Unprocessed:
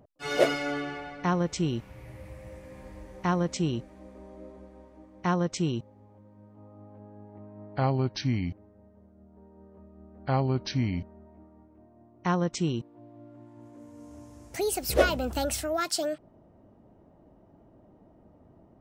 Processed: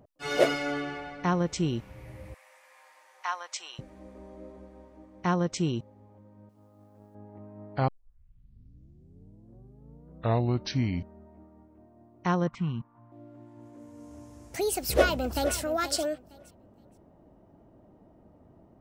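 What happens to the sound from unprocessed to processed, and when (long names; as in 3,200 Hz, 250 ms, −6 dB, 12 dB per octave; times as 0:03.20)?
0:02.34–0:03.79: high-pass filter 850 Hz 24 dB per octave
0:06.49–0:07.15: mu-law and A-law mismatch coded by A
0:07.88: tape start 2.82 s
0:12.47–0:13.12: drawn EQ curve 220 Hz 0 dB, 330 Hz −17 dB, 560 Hz −12 dB, 1,100 Hz +10 dB, 6,500 Hz −24 dB
0:14.77–0:15.56: delay throw 470 ms, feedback 20%, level −12 dB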